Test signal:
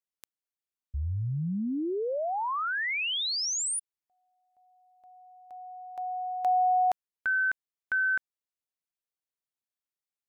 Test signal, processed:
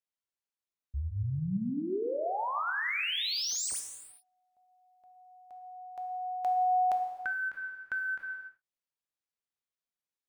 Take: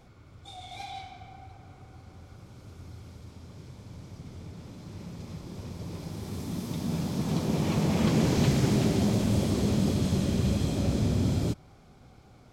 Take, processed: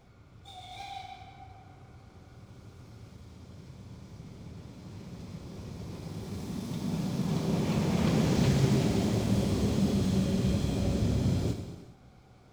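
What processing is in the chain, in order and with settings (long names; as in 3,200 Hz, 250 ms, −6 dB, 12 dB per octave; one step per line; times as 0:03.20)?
running median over 3 samples
reverb whose tail is shaped and stops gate 450 ms falling, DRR 4 dB
every ending faded ahead of time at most 330 dB per second
level −3.5 dB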